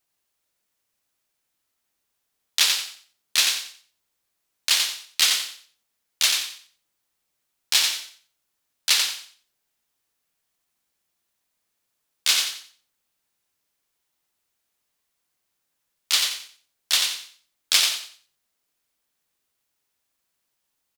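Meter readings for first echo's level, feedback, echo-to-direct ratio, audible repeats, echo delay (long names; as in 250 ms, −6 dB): −5.0 dB, 27%, −4.5 dB, 3, 89 ms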